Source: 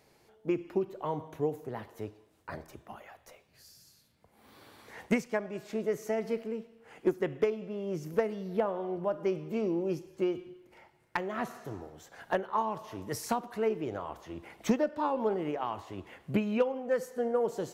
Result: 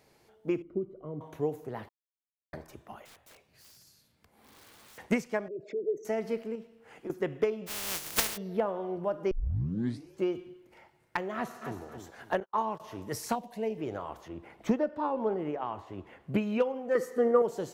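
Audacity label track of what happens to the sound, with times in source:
0.620000	1.210000	moving average over 51 samples
1.890000	2.530000	silence
3.050000	4.980000	wrap-around overflow gain 50 dB
5.480000	6.050000	spectral envelope exaggerated exponent 3
6.550000	7.100000	downward compressor, threshold −37 dBFS
7.660000	8.360000	compressing power law on the bin magnitudes exponent 0.13
9.310000	9.310000	tape start 0.83 s
11.340000	11.830000	delay throw 270 ms, feedback 30%, level −7 dB
12.400000	12.800000	noise gate −39 dBFS, range −46 dB
13.350000	13.780000	phaser with its sweep stopped centre 350 Hz, stages 6
14.280000	16.350000	high-shelf EQ 2,800 Hz −10.5 dB
16.950000	17.420000	hollow resonant body resonances 350/1,200/1,900 Hz, height 14 dB, ringing for 25 ms

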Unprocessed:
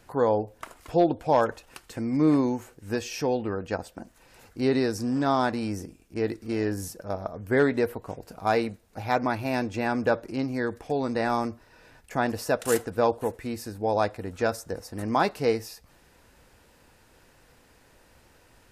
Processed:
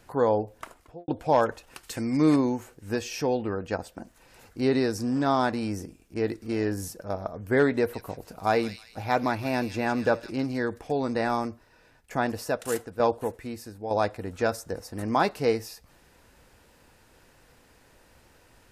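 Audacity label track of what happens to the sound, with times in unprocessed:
0.590000	1.080000	fade out and dull
1.830000	2.360000	high-shelf EQ 2,100 Hz +9.5 dB
7.730000	10.640000	delay with a high-pass on its return 159 ms, feedback 37%, high-pass 3,400 Hz, level −3.5 dB
11.180000	14.040000	shaped tremolo saw down 1.1 Hz, depth 60%

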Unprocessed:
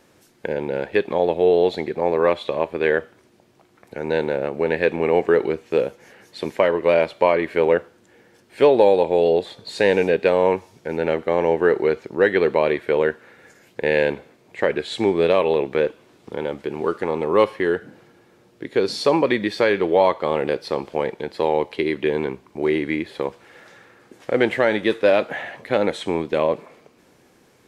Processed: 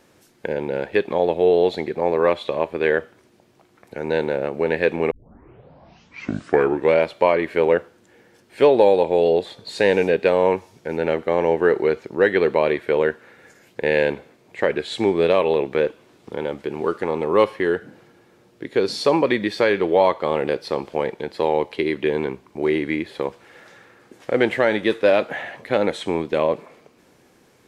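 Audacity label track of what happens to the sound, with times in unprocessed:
5.110000	5.110000	tape start 1.91 s

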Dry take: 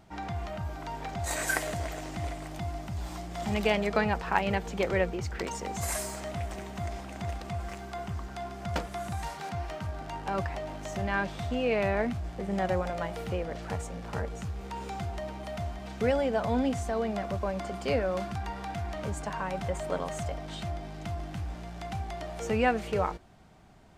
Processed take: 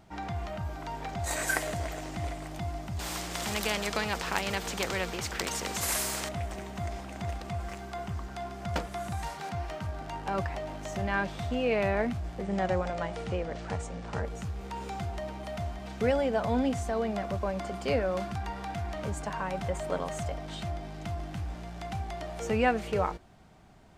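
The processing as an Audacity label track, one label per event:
2.990000	6.290000	every bin compressed towards the loudest bin 2 to 1
12.430000	14.250000	low-pass filter 8,800 Hz 24 dB per octave

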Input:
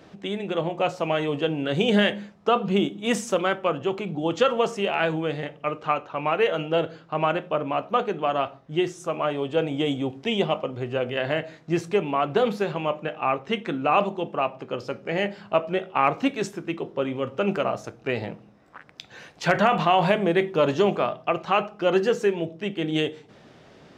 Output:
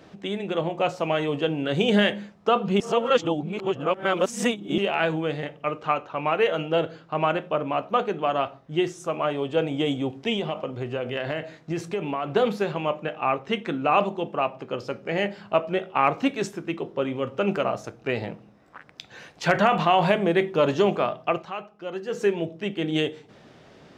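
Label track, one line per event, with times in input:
2.800000	4.780000	reverse
10.360000	12.310000	downward compressor, threshold −23 dBFS
21.350000	22.230000	duck −12 dB, fades 0.16 s

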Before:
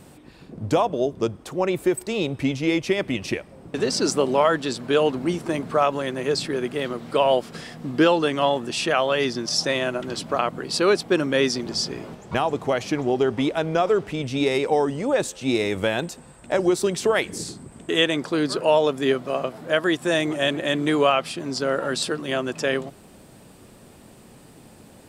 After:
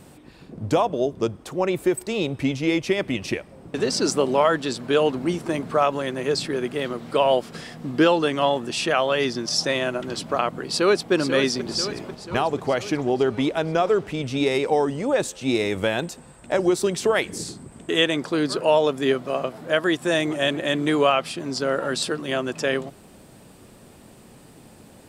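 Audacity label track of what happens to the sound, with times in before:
10.650000	11.120000	delay throw 490 ms, feedback 60%, level −8 dB

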